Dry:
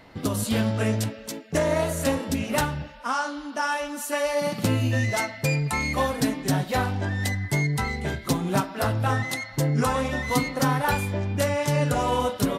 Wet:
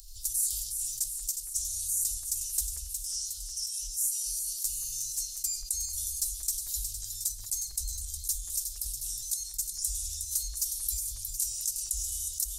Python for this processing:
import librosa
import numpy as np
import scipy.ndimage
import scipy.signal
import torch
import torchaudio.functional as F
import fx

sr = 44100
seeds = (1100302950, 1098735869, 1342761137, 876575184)

p1 = scipy.signal.sosfilt(scipy.signal.cheby2(4, 60, [120.0, 2100.0], 'bandstop', fs=sr, output='sos'), x)
p2 = fx.peak_eq(p1, sr, hz=310.0, db=-14.5, octaves=0.99)
p3 = np.clip(p2, -10.0 ** (-27.5 / 20.0), 10.0 ** (-27.5 / 20.0))
p4 = p2 + F.gain(torch.from_numpy(p3), -3.5).numpy()
p5 = fx.volume_shaper(p4, sr, bpm=82, per_beat=1, depth_db=-9, release_ms=77.0, shape='slow start')
p6 = p5 + fx.echo_alternate(p5, sr, ms=181, hz=2100.0, feedback_pct=72, wet_db=-9.5, dry=0)
y = fx.env_flatten(p6, sr, amount_pct=50)